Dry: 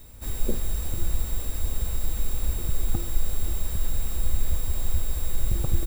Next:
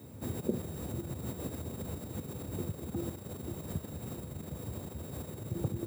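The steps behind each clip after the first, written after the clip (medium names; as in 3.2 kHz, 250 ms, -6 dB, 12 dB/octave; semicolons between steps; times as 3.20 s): tilt shelf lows +10 dB, about 790 Hz; peak limiter -15.5 dBFS, peak gain reduction 15.5 dB; Bessel high-pass 160 Hz, order 8; trim +2 dB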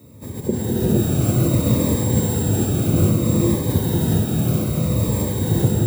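level rider gain up to 11 dB; gated-style reverb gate 490 ms rising, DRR -6 dB; Shepard-style phaser falling 0.61 Hz; trim +3.5 dB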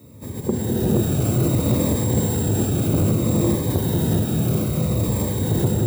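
transformer saturation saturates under 340 Hz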